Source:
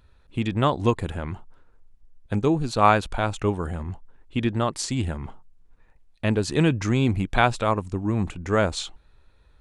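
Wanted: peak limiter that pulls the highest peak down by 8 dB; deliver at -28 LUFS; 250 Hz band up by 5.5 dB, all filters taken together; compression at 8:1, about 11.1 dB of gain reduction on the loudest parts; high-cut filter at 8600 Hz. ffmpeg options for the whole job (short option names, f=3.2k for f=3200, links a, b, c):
-af "lowpass=8.6k,equalizer=f=250:t=o:g=7,acompressor=threshold=-23dB:ratio=8,volume=4dB,alimiter=limit=-16.5dB:level=0:latency=1"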